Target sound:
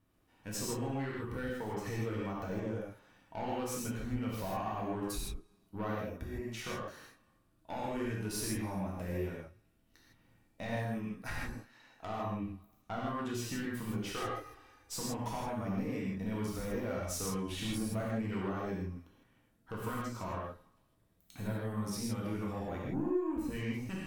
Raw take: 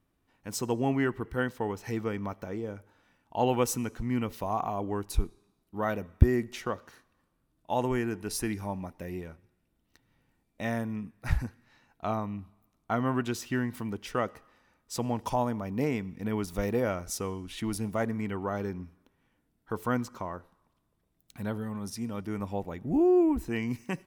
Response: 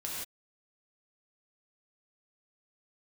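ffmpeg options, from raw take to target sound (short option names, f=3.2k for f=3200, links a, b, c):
-filter_complex "[0:a]asettb=1/sr,asplit=3[a][b][c];[a]atrim=end=10.814[d];[b]atrim=start=10.81:end=12.25,asetpts=PTS-STARTPTS,afade=t=in:d=0.004:c=qsin,afade=t=out:st=1.436:d=0.004:c=qsin,equalizer=f=78:t=o:w=2.6:g=-11[e];[c]atrim=start=12.246[f];[d][e]acrossfade=d=0.004:c1=hsin:c2=qsin[g];[g][f]acrossfade=d=0.004:c1=qsin:c2=hsin,asettb=1/sr,asplit=3[h][i][j];[h]atrim=end=14.154[k];[i]atrim=start=14.15:end=14.94,asetpts=PTS-STARTPTS,afade=t=in:d=0.004:c=qsin,afade=t=out:st=0.786:d=0.004:c=qsin,aecho=1:1:2.5:0.9,atrim=end_sample=34839[l];[j]atrim=start=14.936[m];[k][l]acrossfade=d=0.004:c1=hsin:c2=qsin[n];[n][m]acrossfade=d=0.004:c1=qsin:c2=hsin,acompressor=threshold=-35dB:ratio=5,aeval=exprs='(tanh(44.7*val(0)+0.4)-tanh(0.4))/44.7':c=same[o];[1:a]atrim=start_sample=2205,asetrate=48510,aresample=44100[p];[o][p]afir=irnorm=-1:irlink=0,volume=3dB"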